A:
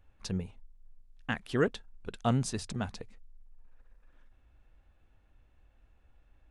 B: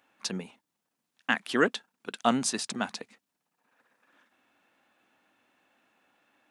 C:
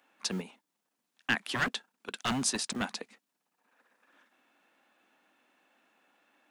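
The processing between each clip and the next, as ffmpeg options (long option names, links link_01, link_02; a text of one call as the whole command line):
ffmpeg -i in.wav -af "highpass=frequency=240:width=0.5412,highpass=frequency=240:width=1.3066,equalizer=frequency=430:width_type=o:width=1.2:gain=-7.5,volume=9dB" out.wav
ffmpeg -i in.wav -filter_complex "[0:a]acrossover=split=150|1300[link_01][link_02][link_03];[link_01]acrusher=bits=7:mix=0:aa=0.000001[link_04];[link_02]aeval=exprs='0.0376*(abs(mod(val(0)/0.0376+3,4)-2)-1)':channel_layout=same[link_05];[link_04][link_05][link_03]amix=inputs=3:normalize=0" out.wav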